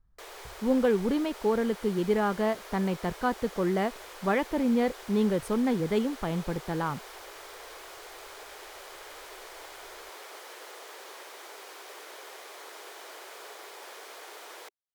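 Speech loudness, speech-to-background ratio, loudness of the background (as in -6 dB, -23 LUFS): -28.5 LUFS, 16.0 dB, -44.5 LUFS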